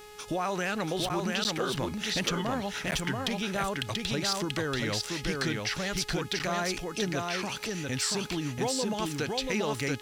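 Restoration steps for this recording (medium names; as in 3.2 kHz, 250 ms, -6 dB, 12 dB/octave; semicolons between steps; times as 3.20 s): clip repair -19.5 dBFS; de-hum 419.8 Hz, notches 37; interpolate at 1.09/1.44/2.91/6.39 s, 9.4 ms; inverse comb 685 ms -3 dB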